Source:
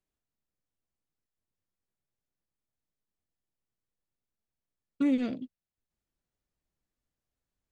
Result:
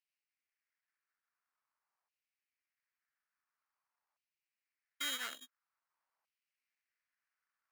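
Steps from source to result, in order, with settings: sample-rate reducer 3.5 kHz, jitter 0%; LFO high-pass saw down 0.48 Hz 870–2900 Hz

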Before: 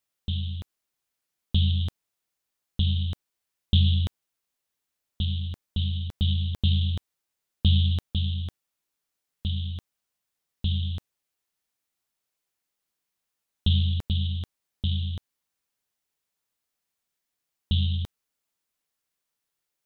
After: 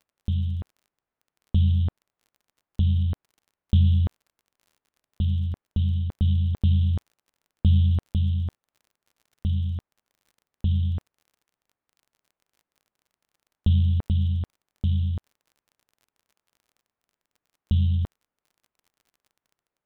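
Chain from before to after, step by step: low-pass 1.4 kHz 12 dB/octave; in parallel at -3 dB: peak limiter -22.5 dBFS, peak gain reduction 11 dB; on the sum: crackle 39 per s -48 dBFS

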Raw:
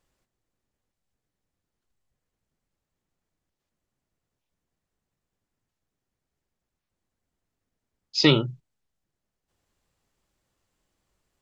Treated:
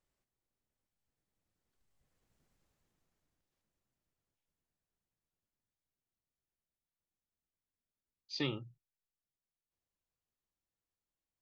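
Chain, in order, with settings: Doppler pass-by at 2.48 s, 18 m/s, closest 7.8 m; trim +4.5 dB

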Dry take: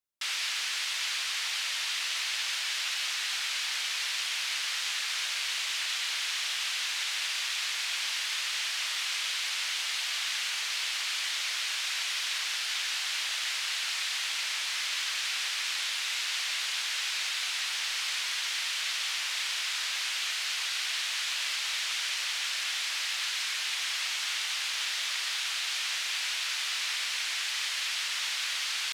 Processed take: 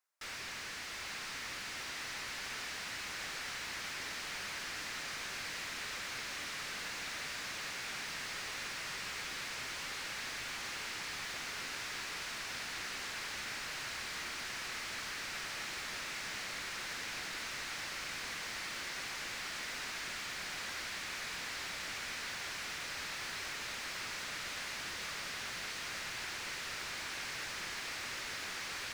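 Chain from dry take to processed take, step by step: high-pass 1.3 kHz 6 dB/octave; peaking EQ 3.2 kHz -10.5 dB 0.96 oct; overdrive pedal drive 31 dB, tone 1.7 kHz, clips at -23.5 dBFS; on a send: echo that smears into a reverb 823 ms, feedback 77%, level -6 dB; on the sum: trim -8 dB

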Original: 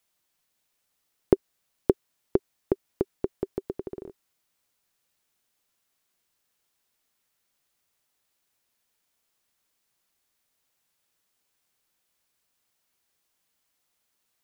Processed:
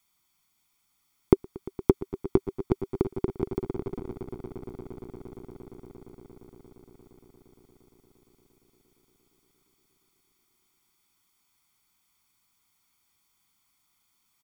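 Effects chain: comb 0.9 ms, depth 75%; echo with a slow build-up 116 ms, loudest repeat 8, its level -18 dB; trim +1.5 dB

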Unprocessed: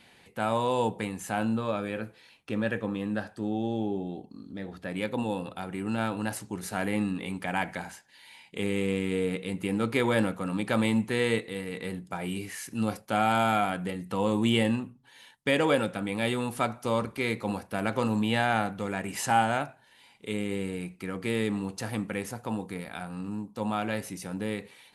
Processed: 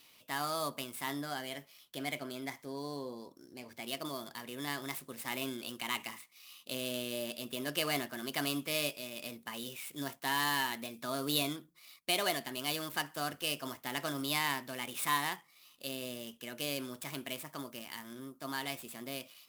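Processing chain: median filter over 9 samples; pre-emphasis filter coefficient 0.9; wide varispeed 1.28×; trim +8 dB

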